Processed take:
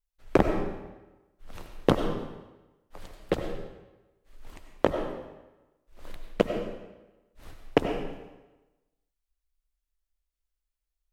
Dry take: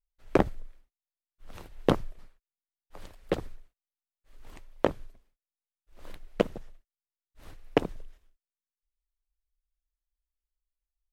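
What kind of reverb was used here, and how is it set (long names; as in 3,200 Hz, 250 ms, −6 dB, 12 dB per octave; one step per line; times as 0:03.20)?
comb and all-pass reverb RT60 1.1 s, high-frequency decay 0.85×, pre-delay 55 ms, DRR 5 dB
level +1.5 dB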